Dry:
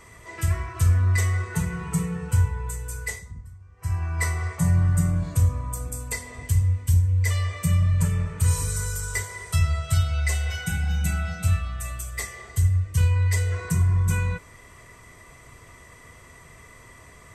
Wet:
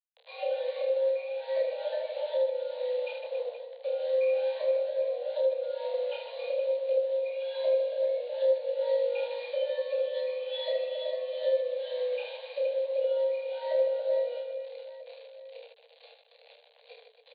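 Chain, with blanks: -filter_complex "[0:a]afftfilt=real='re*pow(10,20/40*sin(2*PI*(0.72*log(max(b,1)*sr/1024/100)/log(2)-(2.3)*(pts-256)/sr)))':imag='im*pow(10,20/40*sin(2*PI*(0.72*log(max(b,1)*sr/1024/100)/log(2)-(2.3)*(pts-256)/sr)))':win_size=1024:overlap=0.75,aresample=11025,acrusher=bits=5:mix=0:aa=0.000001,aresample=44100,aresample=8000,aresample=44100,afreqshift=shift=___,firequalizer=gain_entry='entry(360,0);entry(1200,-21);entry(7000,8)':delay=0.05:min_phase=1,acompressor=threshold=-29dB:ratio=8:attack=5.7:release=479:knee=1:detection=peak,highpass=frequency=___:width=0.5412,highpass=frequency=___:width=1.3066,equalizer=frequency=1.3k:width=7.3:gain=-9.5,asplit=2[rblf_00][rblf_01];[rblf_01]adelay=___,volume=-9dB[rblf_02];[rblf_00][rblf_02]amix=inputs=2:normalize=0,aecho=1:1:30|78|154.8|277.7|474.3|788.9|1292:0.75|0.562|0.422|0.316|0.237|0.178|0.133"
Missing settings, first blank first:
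440, 270, 270, 17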